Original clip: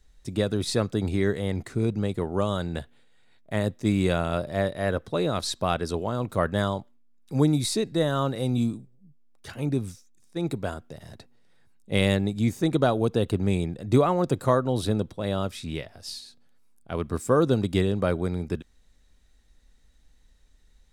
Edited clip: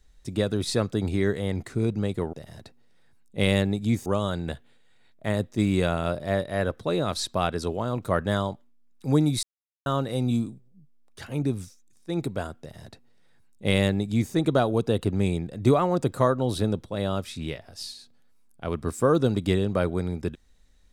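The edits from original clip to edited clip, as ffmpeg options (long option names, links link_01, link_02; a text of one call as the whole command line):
ffmpeg -i in.wav -filter_complex "[0:a]asplit=5[link_01][link_02][link_03][link_04][link_05];[link_01]atrim=end=2.332[link_06];[link_02]atrim=start=10.868:end=12.602[link_07];[link_03]atrim=start=2.328:end=7.7,asetpts=PTS-STARTPTS,afade=type=out:start_time=5.368:duration=0.004:curve=hsin[link_08];[link_04]atrim=start=7.7:end=8.13,asetpts=PTS-STARTPTS,volume=0[link_09];[link_05]atrim=start=8.13,asetpts=PTS-STARTPTS,afade=type=in:duration=0.004:curve=hsin[link_10];[link_06][link_07]acrossfade=duration=0.004:curve1=hsin:curve2=hsin[link_11];[link_08][link_09][link_10]concat=n=3:v=0:a=1[link_12];[link_11][link_12]acrossfade=duration=0.004:curve1=hsin:curve2=hsin" out.wav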